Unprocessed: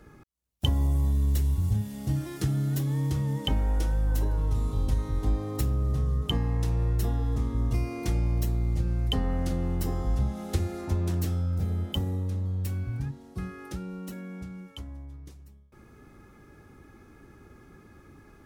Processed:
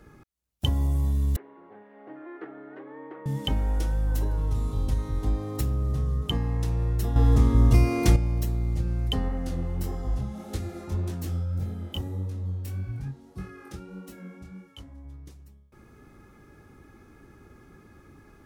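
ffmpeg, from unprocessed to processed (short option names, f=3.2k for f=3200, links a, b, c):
-filter_complex "[0:a]asettb=1/sr,asplit=3[a][b][c];[a]atrim=end=1.364[d];[b]atrim=start=1.36:end=3.26,asetpts=PTS-STARTPTS,afade=t=in:d=0.004:c=qsin,afade=t=out:st=1.896:d=0.004:c=qsin,asuperpass=centerf=820:order=8:qfactor=0.5[e];[c]atrim=start=3.256[f];[d][e]acrossfade=d=0.004:c1=hsin:c2=qsin[g];[g][f]acrossfade=d=0.004:c1=qsin:c2=hsin,asplit=3[h][i][j];[h]afade=t=out:st=9.28:d=0.02[k];[i]flanger=delay=18.5:depth=6.5:speed=1.7,afade=t=in:st=9.28:d=0.02,afade=t=out:st=15.04:d=0.02[l];[j]afade=t=in:st=15.04:d=0.02[m];[k][l][m]amix=inputs=3:normalize=0,asplit=3[n][o][p];[n]atrim=end=7.162[q];[o]atrim=start=7.158:end=8.162,asetpts=PTS-STARTPTS,volume=9dB[r];[p]atrim=start=8.158[s];[q][r]acrossfade=d=0.004:c1=hsin:c2=hsin[t];[t][s]acrossfade=d=0.004:c1=hsin:c2=hsin"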